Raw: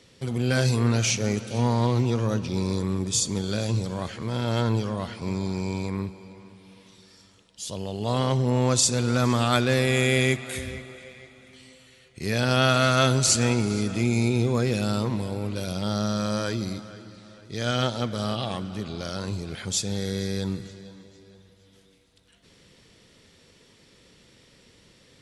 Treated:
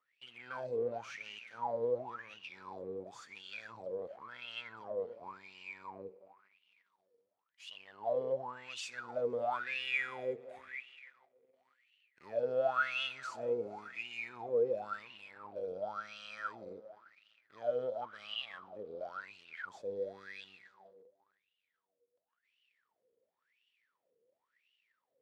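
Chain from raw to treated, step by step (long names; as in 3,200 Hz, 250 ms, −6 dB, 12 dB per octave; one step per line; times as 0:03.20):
gain on one half-wave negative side −7 dB
leveller curve on the samples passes 2
LFO wah 0.94 Hz 460–2,900 Hz, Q 18
level +1 dB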